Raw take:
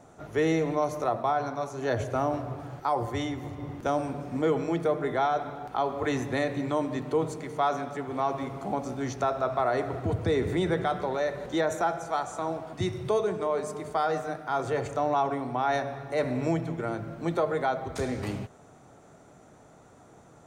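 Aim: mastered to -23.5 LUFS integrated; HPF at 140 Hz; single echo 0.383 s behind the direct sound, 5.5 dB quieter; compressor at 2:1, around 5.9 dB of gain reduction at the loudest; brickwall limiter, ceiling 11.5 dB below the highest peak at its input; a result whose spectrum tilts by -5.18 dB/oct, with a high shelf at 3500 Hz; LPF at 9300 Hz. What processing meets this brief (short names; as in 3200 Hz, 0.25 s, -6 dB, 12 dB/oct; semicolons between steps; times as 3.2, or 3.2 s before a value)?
HPF 140 Hz; LPF 9300 Hz; high shelf 3500 Hz +3.5 dB; compressor 2:1, threshold -32 dBFS; limiter -29.5 dBFS; echo 0.383 s -5.5 dB; gain +14 dB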